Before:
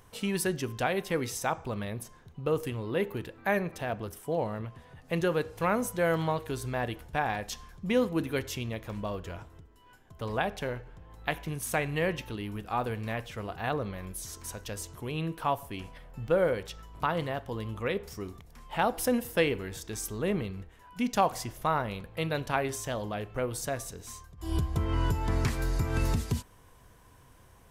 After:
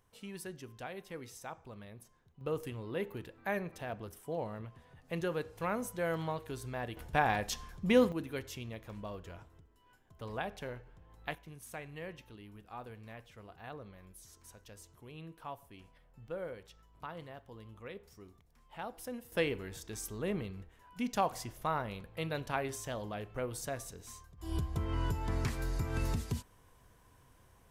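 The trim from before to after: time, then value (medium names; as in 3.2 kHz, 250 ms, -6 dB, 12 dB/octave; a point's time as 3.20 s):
-15 dB
from 2.41 s -7.5 dB
from 6.97 s +0.5 dB
from 8.12 s -8.5 dB
from 11.35 s -15.5 dB
from 19.32 s -6 dB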